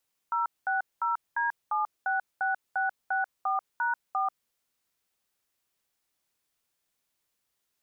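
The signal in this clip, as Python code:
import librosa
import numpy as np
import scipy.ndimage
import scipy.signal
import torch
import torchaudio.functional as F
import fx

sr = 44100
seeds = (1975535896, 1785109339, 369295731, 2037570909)

y = fx.dtmf(sr, digits='060D766664#4', tone_ms=139, gap_ms=209, level_db=-27.5)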